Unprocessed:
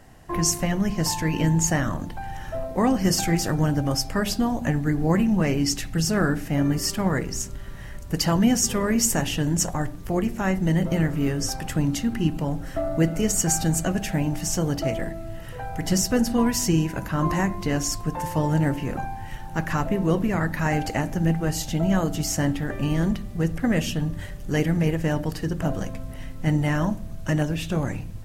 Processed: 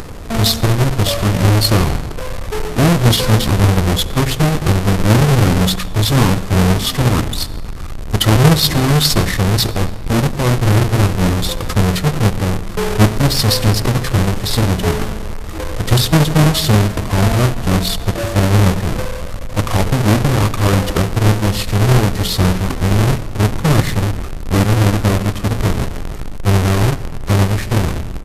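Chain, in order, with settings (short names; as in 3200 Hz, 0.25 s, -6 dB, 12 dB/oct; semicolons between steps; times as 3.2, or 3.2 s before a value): half-waves squared off; pitch shift -7.5 st; upward compressor, threshold -25 dBFS; on a send: reverb RT60 1.8 s, pre-delay 64 ms, DRR 17 dB; on the sum: gain +5.5 dB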